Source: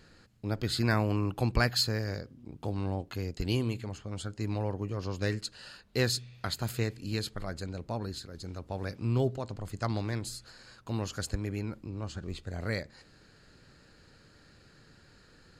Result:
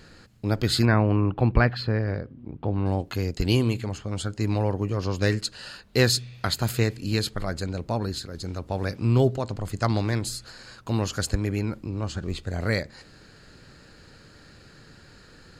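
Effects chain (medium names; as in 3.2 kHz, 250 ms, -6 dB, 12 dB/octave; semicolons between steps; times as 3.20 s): 0.85–2.86 s: distance through air 420 m; trim +8 dB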